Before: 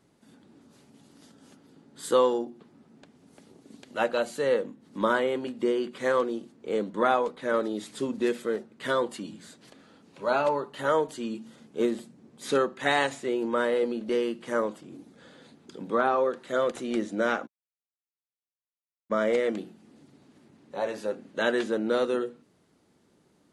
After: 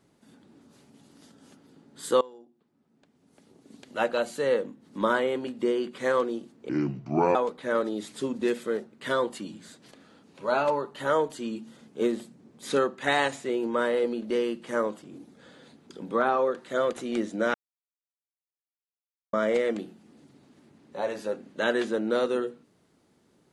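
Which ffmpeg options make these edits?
-filter_complex "[0:a]asplit=6[a][b][c][d][e][f];[a]atrim=end=2.21,asetpts=PTS-STARTPTS,afade=t=out:st=2.206:d=0.004:c=hsin:silence=0.0794328[g];[b]atrim=start=2.21:end=6.694,asetpts=PTS-STARTPTS,afade=t=in:d=1.64:c=qua:silence=0.0794328[h];[c]atrim=start=6.69:end=7.14,asetpts=PTS-STARTPTS,asetrate=29988,aresample=44100[i];[d]atrim=start=7.136:end=17.33,asetpts=PTS-STARTPTS,afade=t=out:st=10.19:d=0.004:c=hsin[j];[e]atrim=start=17.33:end=19.12,asetpts=PTS-STARTPTS,volume=0[k];[f]atrim=start=19.12,asetpts=PTS-STARTPTS,afade=t=in:d=0.004:c=hsin[l];[g][h]concat=n=2:v=0:a=1[m];[m][i]acrossfade=d=0.004:c1=hsin:c2=hsin[n];[j][k][l]concat=n=3:v=0:a=1[o];[n][o]acrossfade=d=0.004:c1=hsin:c2=hsin"

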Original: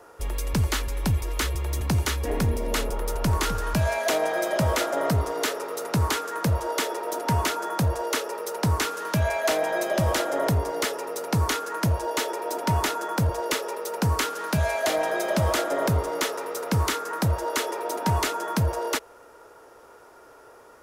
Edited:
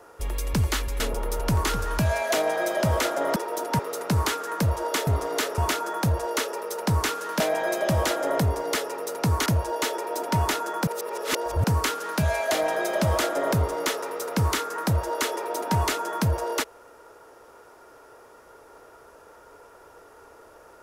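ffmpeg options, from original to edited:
-filter_complex "[0:a]asplit=10[a][b][c][d][e][f][g][h][i][j];[a]atrim=end=1.002[k];[b]atrim=start=2.758:end=5.122[l];[c]atrim=start=6.908:end=7.342[m];[d]atrim=start=5.628:end=6.912[n];[e]atrim=start=5.118:end=5.632[o];[f]atrim=start=7.338:end=9.162[p];[g]atrim=start=9.488:end=11.552[q];[h]atrim=start=11.808:end=13.222[r];[i]atrim=start=13.218:end=13.992,asetpts=PTS-STARTPTS,areverse[s];[j]atrim=start=13.988[t];[k][l]acrossfade=d=0.004:c1=hsin:c2=hsin[u];[u][m]acrossfade=d=0.004:c1=hsin:c2=hsin[v];[v][n]acrossfade=d=0.004:c1=hsin:c2=hsin[w];[w][o]acrossfade=d=0.004:c1=hsin:c2=hsin[x];[x][p]acrossfade=d=0.004:c1=hsin:c2=hsin[y];[y][q]acrossfade=d=0.004:c1=hsin:c2=hsin[z];[z][r]acrossfade=d=0.004:c1=hsin:c2=hsin[aa];[aa][s]acrossfade=d=0.004:c1=hsin:c2=hsin[ab];[ab][t]acrossfade=d=0.004:c1=hsin:c2=hsin"

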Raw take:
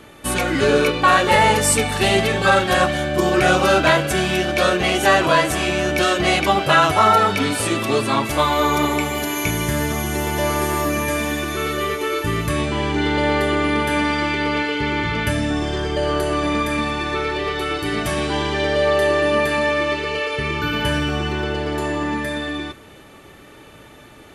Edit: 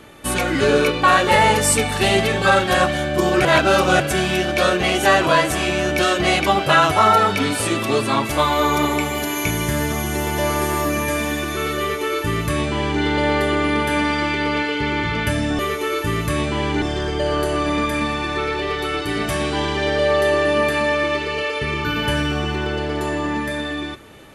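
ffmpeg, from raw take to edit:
-filter_complex "[0:a]asplit=5[a][b][c][d][e];[a]atrim=end=3.452[f];[b]atrim=start=3.448:end=4.002,asetpts=PTS-STARTPTS,areverse[g];[c]atrim=start=3.998:end=15.592[h];[d]atrim=start=11.788:end=13.022[i];[e]atrim=start=15.588[j];[f][g]acrossfade=d=0.004:c1=hsin:c2=hsin[k];[k][h]acrossfade=d=0.004:c1=hsin:c2=hsin[l];[l][i]acrossfade=d=0.004:c1=hsin:c2=hsin[m];[m][j]acrossfade=d=0.004:c1=hsin:c2=hsin"

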